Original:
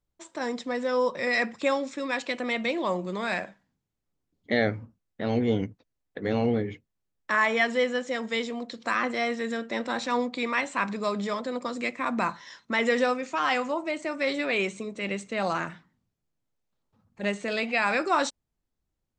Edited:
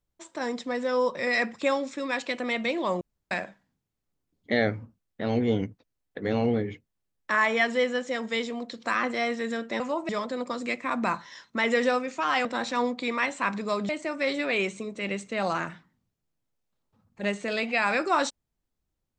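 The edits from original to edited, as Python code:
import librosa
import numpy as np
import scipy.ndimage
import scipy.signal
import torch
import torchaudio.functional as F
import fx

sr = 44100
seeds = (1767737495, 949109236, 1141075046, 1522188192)

y = fx.edit(x, sr, fx.room_tone_fill(start_s=3.01, length_s=0.3),
    fx.swap(start_s=9.8, length_s=1.44, other_s=13.6, other_length_s=0.29), tone=tone)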